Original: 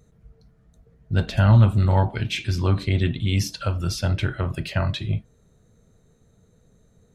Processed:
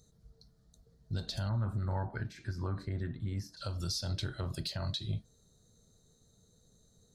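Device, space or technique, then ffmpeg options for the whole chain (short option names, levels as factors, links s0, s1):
over-bright horn tweeter: -filter_complex "[0:a]highshelf=f=3300:t=q:w=3:g=9,alimiter=limit=0.133:level=0:latency=1:release=146,asettb=1/sr,asplit=3[s0][s1][s2];[s0]atrim=end=1.494[s3];[s1]atrim=start=1.49:end=3.57,asetpts=PTS-STARTPTS,afade=t=in:d=0.004:c=qsin,afade=t=out:st=2.076:d=0.004:c=qsin,highshelf=f=2400:t=q:w=3:g=-13[s4];[s2]atrim=start=3.566[s5];[s3][s4]acrossfade=d=0.004:c1=hsin:c2=qsin[s6];[s6][s5]acrossfade=d=0.004:c1=qsin:c2=hsin,volume=0.355"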